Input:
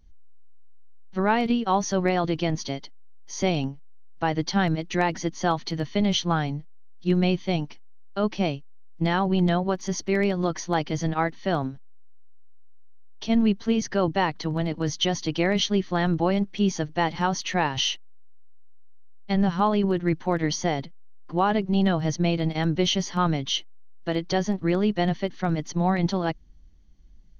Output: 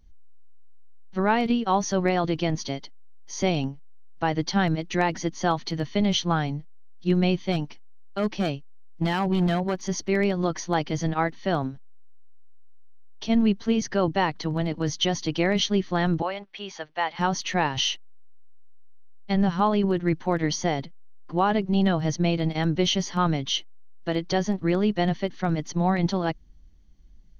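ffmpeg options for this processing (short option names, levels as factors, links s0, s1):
-filter_complex "[0:a]asettb=1/sr,asplit=3[s0][s1][s2];[s0]atrim=end=7.524[s3];[s1]atrim=start=7.52:end=9.75,asetpts=PTS-STARTPTS,afade=t=in:d=0.004:c=qsin,afade=t=out:st=2.226:d=0.004:c=qsin,asoftclip=type=hard:threshold=0.141[s4];[s2]atrim=start=9.746[s5];[s3][s4]acrossfade=d=0.004:c1=hsin:c2=qsin[s6];[s6][s5]acrossfade=d=0.004:c1=qsin:c2=hsin,asettb=1/sr,asplit=3[s7][s8][s9];[s7]atrim=end=16.224[s10];[s8]atrim=start=16.22:end=17.19,asetpts=PTS-STARTPTS,afade=t=in:d=0.004:c=qsin,afade=t=out:st=0.966:d=0.004:c=qsin,acrossover=split=540 4600:gain=0.0794 1 0.0891[s11][s12][s13];[s11][s12][s13]amix=inputs=3:normalize=0[s14];[s9]atrim=start=17.186[s15];[s10][s14]acrossfade=d=0.004:c1=hsin:c2=qsin[s16];[s16][s15]acrossfade=d=0.004:c1=qsin:c2=hsin"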